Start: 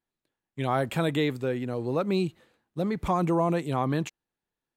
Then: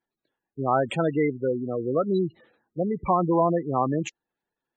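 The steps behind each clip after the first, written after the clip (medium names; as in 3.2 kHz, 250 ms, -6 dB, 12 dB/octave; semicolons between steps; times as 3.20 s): spectral gate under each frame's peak -15 dB strong; bass shelf 170 Hz -11.5 dB; trim +5.5 dB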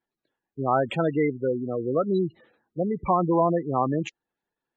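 low-pass 5 kHz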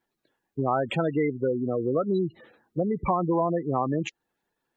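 compression 2.5:1, threshold -32 dBFS, peak gain reduction 10.5 dB; trim +6.5 dB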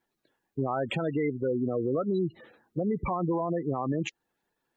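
peak limiter -20.5 dBFS, peak gain reduction 9 dB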